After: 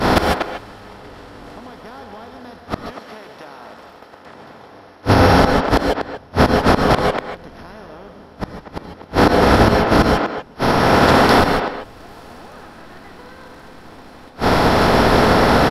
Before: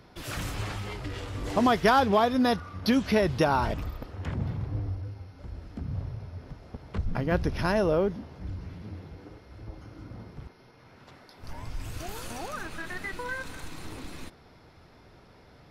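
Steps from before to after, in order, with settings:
compressor on every frequency bin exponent 0.4
downward expander −18 dBFS
0:02.77–0:05.06: high-pass filter 420 Hz 6 dB per octave
downward compressor 6 to 1, threshold −23 dBFS, peak gain reduction 9.5 dB
gate with flip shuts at −24 dBFS, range −41 dB
far-end echo of a speakerphone 240 ms, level −9 dB
reverb whose tail is shaped and stops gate 170 ms rising, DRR 5 dB
boost into a limiter +30 dB
level −1 dB

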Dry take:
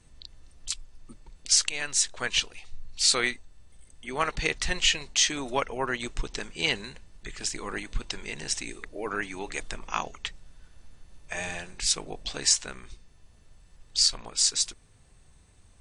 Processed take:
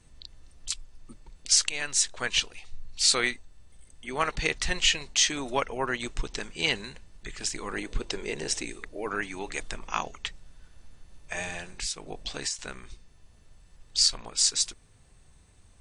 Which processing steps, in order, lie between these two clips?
0:07.78–0:08.66: parametric band 420 Hz +10.5 dB 1.1 octaves
0:11.41–0:12.59: downward compressor 16 to 1, threshold −29 dBFS, peak gain reduction 13 dB

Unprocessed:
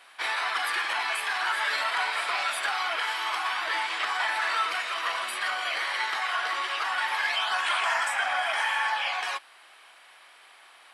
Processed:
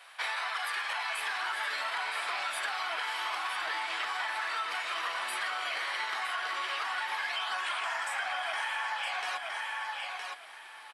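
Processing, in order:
high-pass filter 460 Hz 24 dB per octave, from 0:01.18 54 Hz
repeating echo 965 ms, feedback 18%, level −9 dB
downward compressor, threshold −31 dBFS, peak gain reduction 9 dB

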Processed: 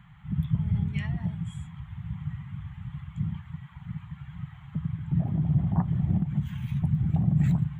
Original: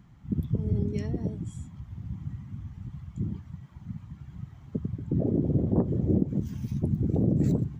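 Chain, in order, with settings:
drawn EQ curve 110 Hz 0 dB, 160 Hz +6 dB, 250 Hz −13 dB, 490 Hz −24 dB, 760 Hz +5 dB, 1,900 Hz +11 dB, 3,400 Hz +9 dB, 5,300 Hz −16 dB, 7,500 Hz −2 dB

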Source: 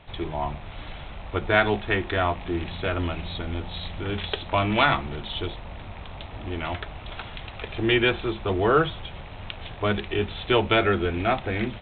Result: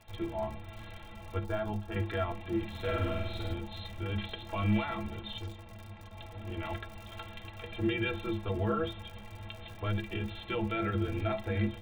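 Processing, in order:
sub-octave generator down 1 octave, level −1 dB
0:01.45–0:01.96: octave-band graphic EQ 125/250/500/2,000/4,000 Hz −6/−5/−5/−11/−9 dB
0:05.38–0:06.17: tube saturation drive 31 dB, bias 0.45
surface crackle 62 per second −32 dBFS
brickwall limiter −16 dBFS, peak gain reduction 11 dB
stiff-string resonator 99 Hz, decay 0.23 s, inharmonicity 0.03
0:02.70–0:03.54: flutter between parallel walls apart 8.4 metres, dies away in 0.99 s

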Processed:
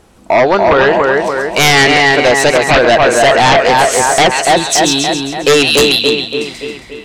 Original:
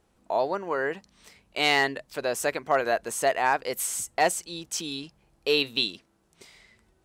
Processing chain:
echo with a time of its own for lows and highs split 2,400 Hz, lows 286 ms, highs 135 ms, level −4 dB
treble cut that deepens with the level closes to 2,500 Hz, closed at −18 dBFS
sine wavefolder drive 12 dB, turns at −9 dBFS
level +5 dB

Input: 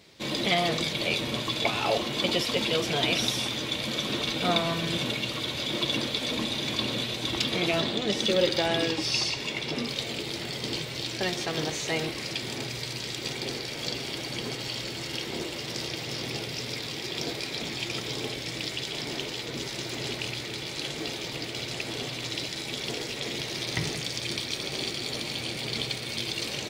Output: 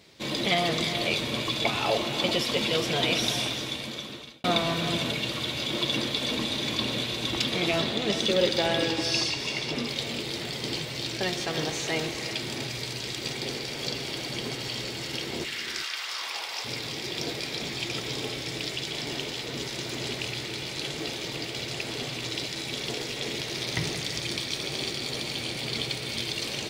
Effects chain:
0:15.44–0:16.64: high-pass with resonance 1,800 Hz → 820 Hz, resonance Q 2.8
reverb whose tail is shaped and stops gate 420 ms rising, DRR 8.5 dB
0:03.41–0:04.44: fade out

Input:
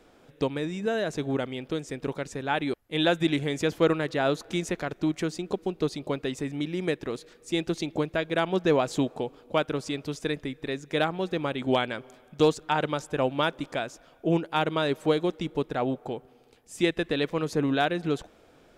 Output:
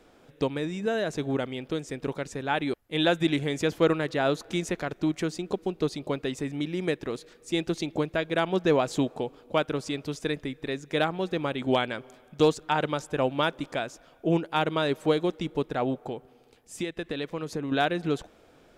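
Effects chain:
0:16.07–0:17.72: downward compressor 6 to 1, threshold −29 dBFS, peak gain reduction 10.5 dB

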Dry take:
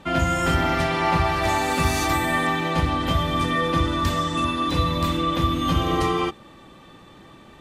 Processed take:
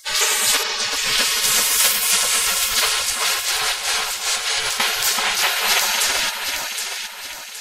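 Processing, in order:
0:00.63–0:01.18: low-pass filter 5,000 Hz 12 dB per octave
gate on every frequency bin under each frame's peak −30 dB weak
0:03.10–0:04.80: compressor whose output falls as the input rises −47 dBFS, ratio −0.5
flanger 0.31 Hz, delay 0.9 ms, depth 7.7 ms, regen −69%
delay that swaps between a low-pass and a high-pass 384 ms, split 1,600 Hz, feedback 63%, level −2.5 dB
boost into a limiter +30.5 dB
level −2.5 dB

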